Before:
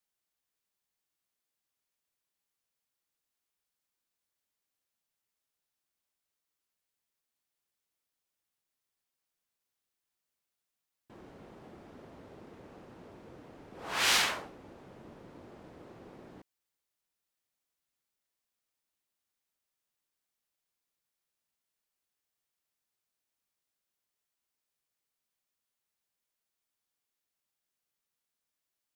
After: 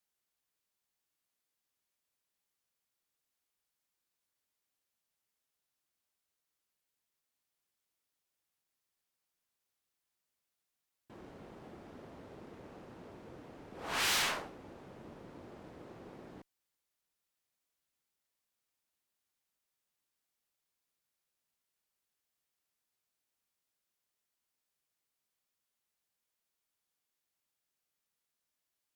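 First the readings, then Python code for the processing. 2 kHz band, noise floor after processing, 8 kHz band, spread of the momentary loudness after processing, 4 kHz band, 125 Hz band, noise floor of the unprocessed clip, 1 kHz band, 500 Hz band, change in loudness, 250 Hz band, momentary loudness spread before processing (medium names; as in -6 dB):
-4.0 dB, under -85 dBFS, -3.5 dB, 22 LU, -4.5 dB, 0.0 dB, under -85 dBFS, -3.0 dB, -1.0 dB, -5.0 dB, -0.5 dB, 17 LU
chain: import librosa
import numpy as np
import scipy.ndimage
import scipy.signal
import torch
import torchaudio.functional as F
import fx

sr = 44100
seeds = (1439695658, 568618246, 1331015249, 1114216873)

y = fx.tube_stage(x, sr, drive_db=32.0, bias=0.65)
y = y * 10.0 ** (3.5 / 20.0)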